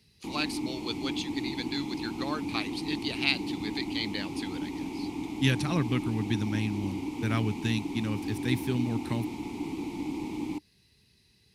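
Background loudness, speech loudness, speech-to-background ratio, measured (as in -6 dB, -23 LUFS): -35.5 LUFS, -32.5 LUFS, 3.0 dB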